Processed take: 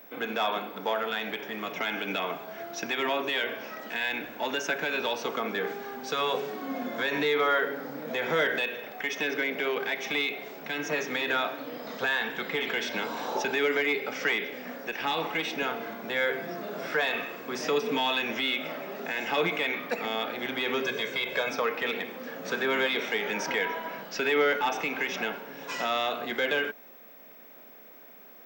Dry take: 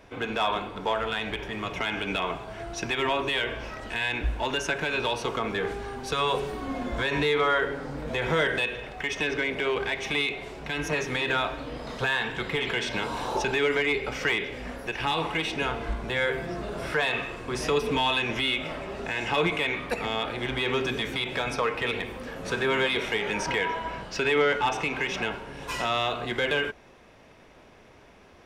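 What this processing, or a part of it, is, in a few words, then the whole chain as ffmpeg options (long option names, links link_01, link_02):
old television with a line whistle: -filter_complex "[0:a]asettb=1/sr,asplit=3[link_01][link_02][link_03];[link_01]atrim=end=20.824[link_04];[link_02]atrim=start=20.82:end=21.49,asetpts=PTS-STARTPTS,afade=type=in:duration=0.004:curve=qsin,afade=type=out:start_time=0.666:duration=0.004:curve=qsin,aecho=1:1:1.9:0.6,atrim=end_sample=29547[link_05];[link_03]atrim=start=21.486[link_06];[link_04][link_05]acrossfade=duration=0.004:curve1=hsin:curve2=qsin[link_07];[link_07][link_06]acrossfade=duration=0.004:curve1=qsin:curve2=hsin,highpass=frequency=200:width=0.5412,highpass=frequency=200:width=1.3066,equalizer=frequency=360:width_type=q:width=4:gain=-5,equalizer=frequency=1000:width_type=q:width=4:gain=-5,equalizer=frequency=2800:width_type=q:width=4:gain=-4,equalizer=frequency=4200:width_type=q:width=4:gain=-3,lowpass=frequency=6900:width=0.5412,lowpass=frequency=6900:width=1.3066,aeval=exprs='val(0)+0.00355*sin(2*PI*15734*n/s)':channel_layout=same"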